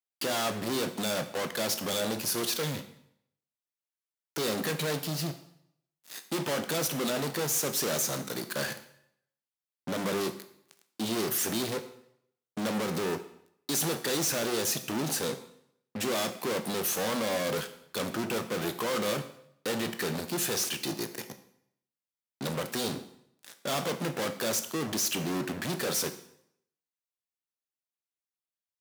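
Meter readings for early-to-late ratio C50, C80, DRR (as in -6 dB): 12.0 dB, 14.5 dB, 8.5 dB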